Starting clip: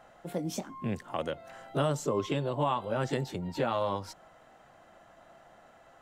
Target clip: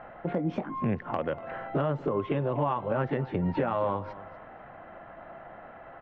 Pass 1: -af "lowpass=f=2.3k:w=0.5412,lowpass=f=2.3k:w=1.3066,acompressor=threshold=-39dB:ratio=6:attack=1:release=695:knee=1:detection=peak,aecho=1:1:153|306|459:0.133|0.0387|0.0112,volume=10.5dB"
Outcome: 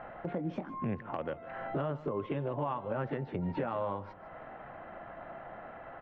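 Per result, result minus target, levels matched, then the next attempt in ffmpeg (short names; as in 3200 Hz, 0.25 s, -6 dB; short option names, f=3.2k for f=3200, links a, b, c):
echo 88 ms early; compressor: peak gain reduction +6 dB
-af "lowpass=f=2.3k:w=0.5412,lowpass=f=2.3k:w=1.3066,acompressor=threshold=-39dB:ratio=6:attack=1:release=695:knee=1:detection=peak,aecho=1:1:241|482|723:0.133|0.0387|0.0112,volume=10.5dB"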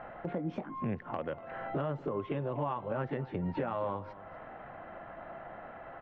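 compressor: peak gain reduction +6 dB
-af "lowpass=f=2.3k:w=0.5412,lowpass=f=2.3k:w=1.3066,acompressor=threshold=-31.5dB:ratio=6:attack=1:release=695:knee=1:detection=peak,aecho=1:1:241|482|723:0.133|0.0387|0.0112,volume=10.5dB"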